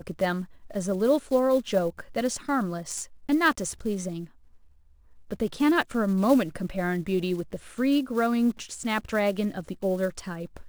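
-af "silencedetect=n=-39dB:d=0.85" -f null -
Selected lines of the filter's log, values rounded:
silence_start: 4.25
silence_end: 5.31 | silence_duration: 1.06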